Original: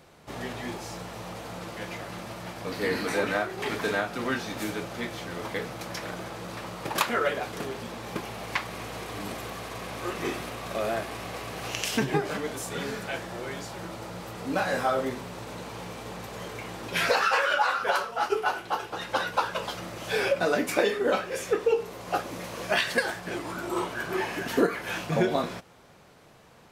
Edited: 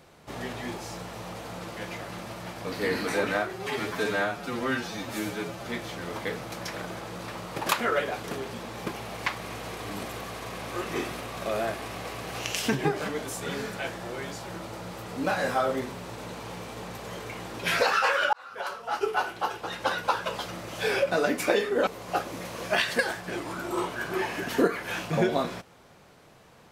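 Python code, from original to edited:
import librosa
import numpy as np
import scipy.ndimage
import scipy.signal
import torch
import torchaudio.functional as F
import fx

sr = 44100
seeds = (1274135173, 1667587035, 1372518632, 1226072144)

y = fx.edit(x, sr, fx.stretch_span(start_s=3.53, length_s=1.42, factor=1.5),
    fx.fade_in_span(start_s=17.62, length_s=0.82),
    fx.cut(start_s=21.16, length_s=0.7), tone=tone)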